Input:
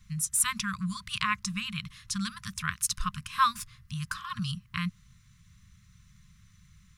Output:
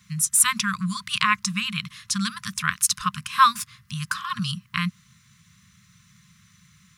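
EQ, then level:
high-pass filter 170 Hz 12 dB per octave
+8.0 dB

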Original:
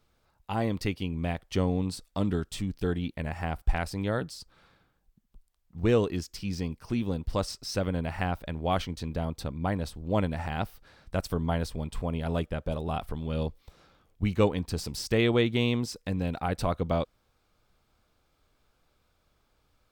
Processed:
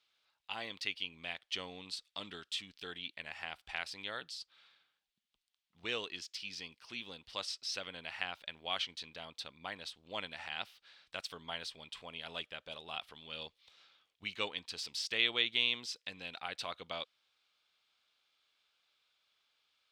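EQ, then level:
resonant band-pass 3,300 Hz, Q 1.9
+4.5 dB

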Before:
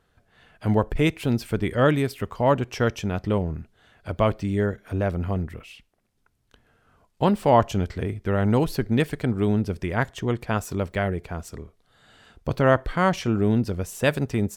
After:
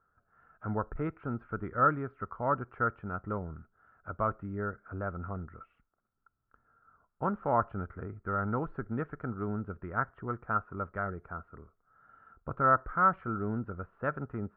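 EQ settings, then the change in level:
transistor ladder low-pass 1,400 Hz, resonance 85%
high-frequency loss of the air 300 metres
0.0 dB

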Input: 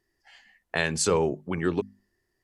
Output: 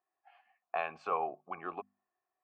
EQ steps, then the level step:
formant filter a
low-pass filter 3,100 Hz 12 dB per octave
flat-topped bell 1,300 Hz +8.5 dB
0.0 dB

